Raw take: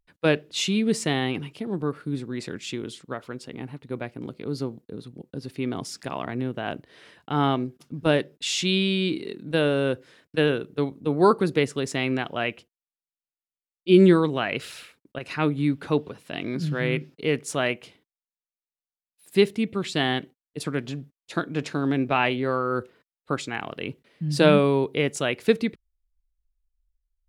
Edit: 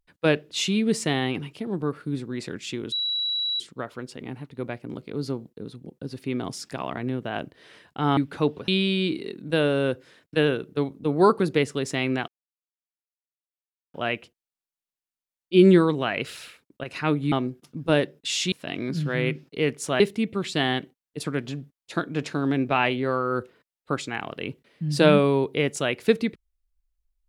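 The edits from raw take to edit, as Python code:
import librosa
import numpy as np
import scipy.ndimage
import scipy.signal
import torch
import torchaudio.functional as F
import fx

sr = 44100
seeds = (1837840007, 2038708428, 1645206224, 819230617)

y = fx.edit(x, sr, fx.insert_tone(at_s=2.92, length_s=0.68, hz=3910.0, db=-23.5),
    fx.swap(start_s=7.49, length_s=1.2, other_s=15.67, other_length_s=0.51),
    fx.insert_silence(at_s=12.29, length_s=1.66),
    fx.cut(start_s=17.66, length_s=1.74), tone=tone)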